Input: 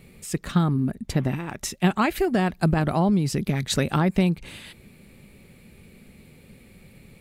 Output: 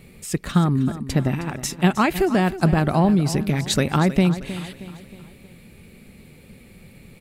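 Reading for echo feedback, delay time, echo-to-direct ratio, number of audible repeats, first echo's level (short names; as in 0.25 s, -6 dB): 47%, 0.314 s, -13.0 dB, 4, -14.0 dB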